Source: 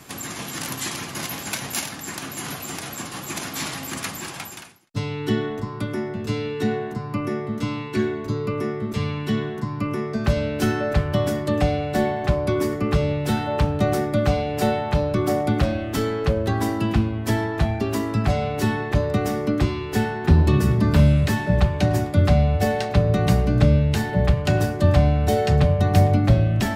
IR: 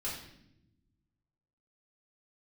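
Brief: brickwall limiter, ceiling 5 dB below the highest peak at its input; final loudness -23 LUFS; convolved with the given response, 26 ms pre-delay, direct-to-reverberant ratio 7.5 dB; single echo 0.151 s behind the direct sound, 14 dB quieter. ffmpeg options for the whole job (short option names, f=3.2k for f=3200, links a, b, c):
-filter_complex "[0:a]alimiter=limit=-9.5dB:level=0:latency=1,aecho=1:1:151:0.2,asplit=2[a][b];[1:a]atrim=start_sample=2205,adelay=26[c];[b][c]afir=irnorm=-1:irlink=0,volume=-10dB[d];[a][d]amix=inputs=2:normalize=0,volume=-1.5dB"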